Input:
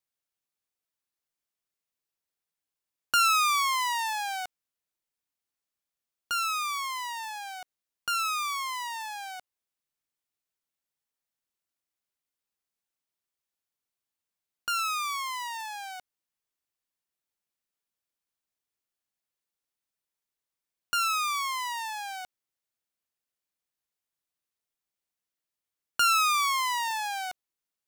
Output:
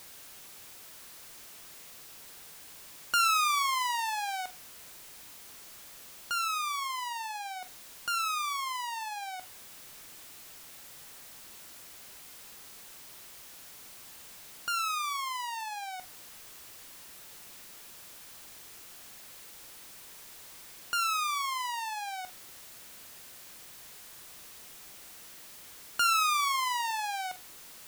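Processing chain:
converter with a step at zero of −38.5 dBFS
flutter between parallel walls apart 7.9 metres, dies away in 0.21 s
level −3.5 dB

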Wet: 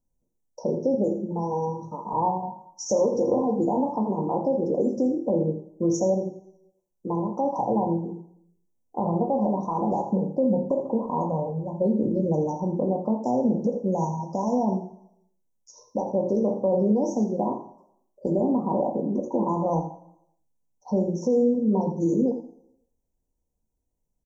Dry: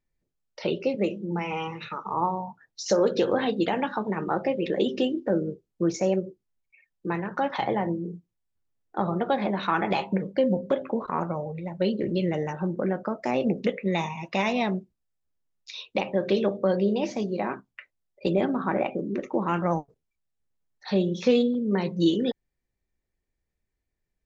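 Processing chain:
parametric band 1,600 Hz −5 dB 0.64 octaves
on a send at −1 dB: convolution reverb, pre-delay 3 ms
on the sum: brickwall limiter −16 dBFS, peak gain reduction 10 dB
Chebyshev band-stop filter 990–5,700 Hz, order 5
single-tap delay 83 ms −12.5 dB
level +2.5 dB

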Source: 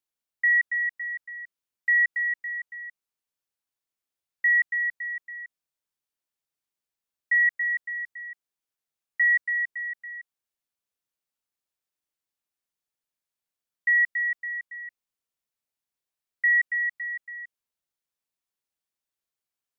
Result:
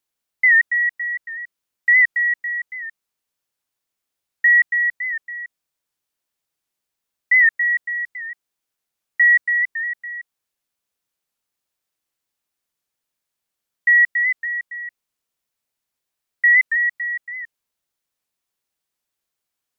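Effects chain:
wow of a warped record 78 rpm, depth 100 cents
level +7.5 dB

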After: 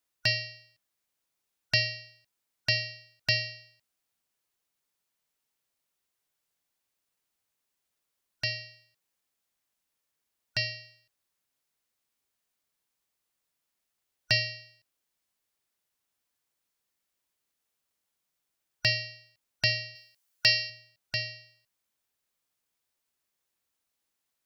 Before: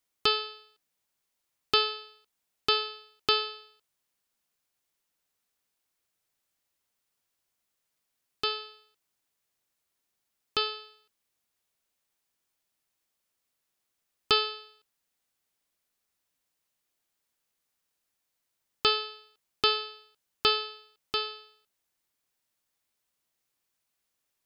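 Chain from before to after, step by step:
band-splitting scrambler in four parts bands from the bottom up 4123
0:19.95–0:20.70: spectral tilt +2 dB per octave
level −1.5 dB

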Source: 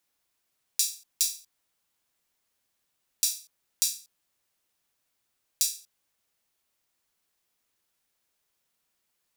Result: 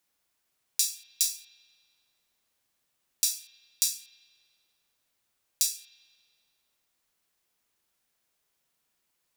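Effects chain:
spring reverb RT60 1.9 s, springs 41 ms, chirp 70 ms, DRR 8 dB

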